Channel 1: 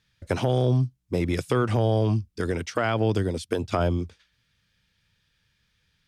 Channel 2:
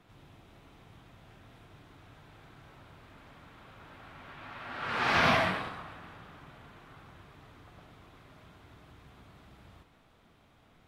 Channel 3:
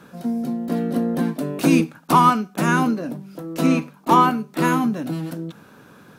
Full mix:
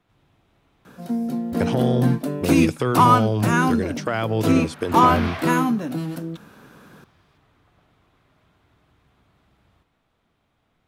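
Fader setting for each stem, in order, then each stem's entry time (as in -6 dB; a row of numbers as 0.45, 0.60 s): +0.5, -6.5, -0.5 dB; 1.30, 0.00, 0.85 s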